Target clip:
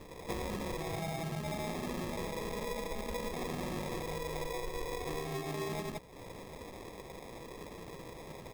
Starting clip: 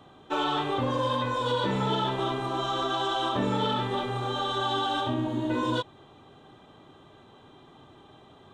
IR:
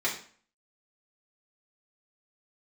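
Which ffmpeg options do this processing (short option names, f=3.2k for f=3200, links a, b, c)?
-af "bandreject=f=50:t=h:w=6,bandreject=f=100:t=h:w=6,bandreject=f=150:t=h:w=6,bandreject=f=200:t=h:w=6,bandreject=f=250:t=h:w=6,aecho=1:1:110.8|177.8:0.562|0.708,asetrate=55563,aresample=44100,atempo=0.793701,highshelf=f=3.6k:g=10.5,acrusher=samples=30:mix=1:aa=0.000001,acompressor=threshold=-40dB:ratio=5,volume=2.5dB"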